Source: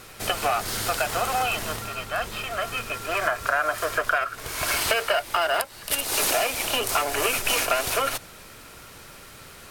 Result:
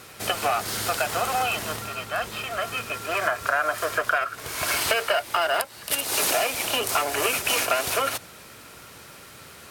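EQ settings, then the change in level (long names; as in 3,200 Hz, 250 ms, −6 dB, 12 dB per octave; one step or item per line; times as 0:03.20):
high-pass filter 78 Hz
0.0 dB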